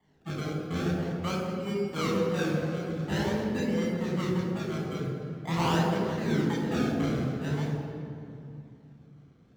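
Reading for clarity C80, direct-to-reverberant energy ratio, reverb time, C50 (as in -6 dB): 2.0 dB, -4.5 dB, 2.5 s, 0.5 dB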